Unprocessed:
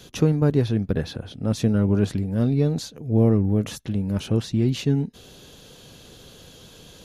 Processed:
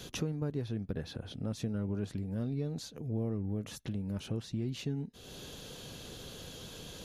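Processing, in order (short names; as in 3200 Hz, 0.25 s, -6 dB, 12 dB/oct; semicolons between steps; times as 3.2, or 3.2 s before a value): compressor 2.5:1, threshold -40 dBFS, peak gain reduction 17.5 dB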